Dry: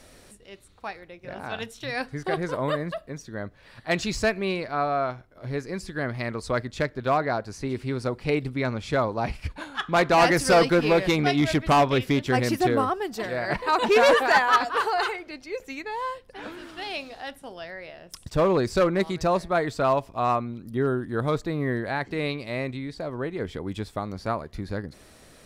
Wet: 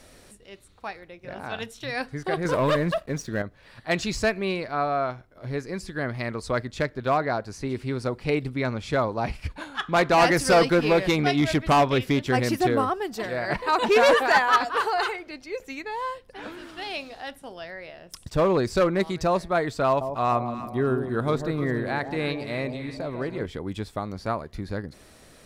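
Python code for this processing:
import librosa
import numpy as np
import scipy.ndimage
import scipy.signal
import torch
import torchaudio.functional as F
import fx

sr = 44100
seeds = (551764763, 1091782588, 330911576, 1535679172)

y = fx.leveller(x, sr, passes=2, at=(2.45, 3.42))
y = fx.echo_alternate(y, sr, ms=148, hz=910.0, feedback_pct=62, wet_db=-7.5, at=(19.86, 23.46))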